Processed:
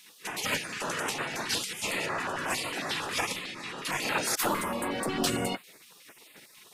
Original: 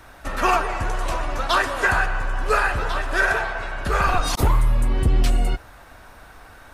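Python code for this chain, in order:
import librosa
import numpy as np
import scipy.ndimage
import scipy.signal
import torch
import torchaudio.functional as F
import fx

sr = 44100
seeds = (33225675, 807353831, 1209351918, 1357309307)

y = fx.spec_gate(x, sr, threshold_db=-20, keep='weak')
y = fx.peak_eq(y, sr, hz=61.0, db=-11.0, octaves=1.9)
y = fx.filter_held_notch(y, sr, hz=11.0, low_hz=570.0, high_hz=5800.0)
y = F.gain(torch.from_numpy(y), 4.0).numpy()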